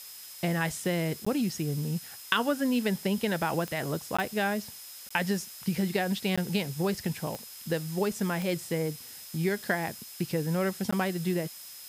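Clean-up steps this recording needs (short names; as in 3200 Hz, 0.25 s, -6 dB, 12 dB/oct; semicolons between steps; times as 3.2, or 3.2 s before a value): de-click; notch 5100 Hz, Q 30; interpolate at 1.25/4.17/5.09/6.36/10.91, 15 ms; noise print and reduce 30 dB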